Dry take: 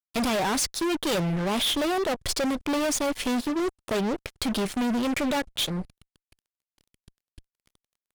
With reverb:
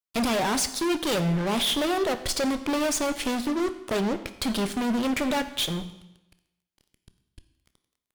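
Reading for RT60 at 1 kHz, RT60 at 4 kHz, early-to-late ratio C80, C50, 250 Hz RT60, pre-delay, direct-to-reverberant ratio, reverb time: 0.90 s, 0.85 s, 14.5 dB, 12.5 dB, 0.90 s, 16 ms, 10.0 dB, 0.90 s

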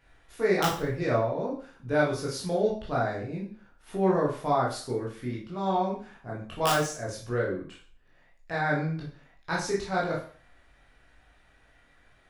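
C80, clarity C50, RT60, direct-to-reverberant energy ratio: 11.0 dB, 5.5 dB, 0.45 s, −5.0 dB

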